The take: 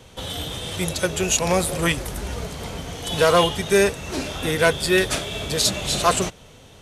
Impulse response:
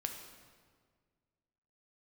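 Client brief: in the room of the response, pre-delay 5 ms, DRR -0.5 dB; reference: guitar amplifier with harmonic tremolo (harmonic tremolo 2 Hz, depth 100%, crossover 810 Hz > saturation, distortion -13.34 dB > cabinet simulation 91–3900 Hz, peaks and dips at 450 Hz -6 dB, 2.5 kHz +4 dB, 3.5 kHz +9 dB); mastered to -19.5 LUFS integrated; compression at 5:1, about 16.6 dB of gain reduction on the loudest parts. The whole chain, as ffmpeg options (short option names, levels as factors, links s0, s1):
-filter_complex "[0:a]acompressor=threshold=0.0251:ratio=5,asplit=2[s0][s1];[1:a]atrim=start_sample=2205,adelay=5[s2];[s1][s2]afir=irnorm=-1:irlink=0,volume=1.06[s3];[s0][s3]amix=inputs=2:normalize=0,acrossover=split=810[s4][s5];[s4]aeval=exprs='val(0)*(1-1/2+1/2*cos(2*PI*2*n/s))':c=same[s6];[s5]aeval=exprs='val(0)*(1-1/2-1/2*cos(2*PI*2*n/s))':c=same[s7];[s6][s7]amix=inputs=2:normalize=0,asoftclip=threshold=0.0266,highpass=91,equalizer=f=450:t=q:w=4:g=-6,equalizer=f=2500:t=q:w=4:g=4,equalizer=f=3500:t=q:w=4:g=9,lowpass=f=3900:w=0.5412,lowpass=f=3900:w=1.3066,volume=7.08"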